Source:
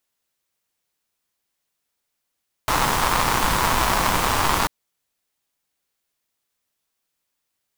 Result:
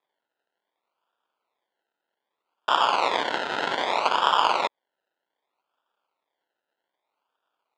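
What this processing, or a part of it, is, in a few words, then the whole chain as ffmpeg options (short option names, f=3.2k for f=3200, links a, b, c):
circuit-bent sampling toy: -af "acrusher=samples=30:mix=1:aa=0.000001:lfo=1:lforange=18:lforate=0.64,highpass=590,equalizer=f=940:t=q:w=4:g=5,equalizer=f=1.4k:t=q:w=4:g=8,equalizer=f=3.4k:t=q:w=4:g=7,equalizer=f=5.7k:t=q:w=4:g=-8,lowpass=f=5.9k:w=0.5412,lowpass=f=5.9k:w=1.3066,volume=-2dB"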